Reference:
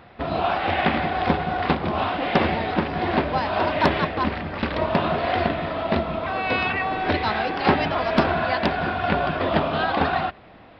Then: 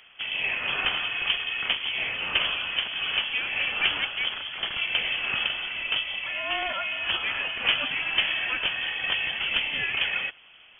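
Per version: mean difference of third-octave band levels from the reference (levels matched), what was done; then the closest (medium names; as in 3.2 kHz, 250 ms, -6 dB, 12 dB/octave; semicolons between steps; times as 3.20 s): 11.0 dB: frequency inversion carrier 3.3 kHz; trim -5.5 dB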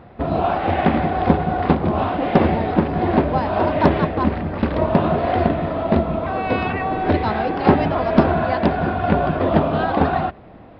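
3.5 dB: tilt shelf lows +7.5 dB, about 1.2 kHz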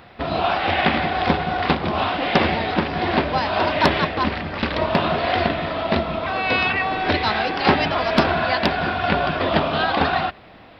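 1.0 dB: treble shelf 3.5 kHz +9 dB; trim +1.5 dB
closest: third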